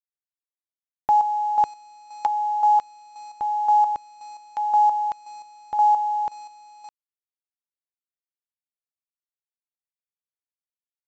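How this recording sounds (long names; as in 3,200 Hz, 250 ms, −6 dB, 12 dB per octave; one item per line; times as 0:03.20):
a quantiser's noise floor 8 bits, dither none
chopped level 1.9 Hz, depth 60%, duty 30%
mu-law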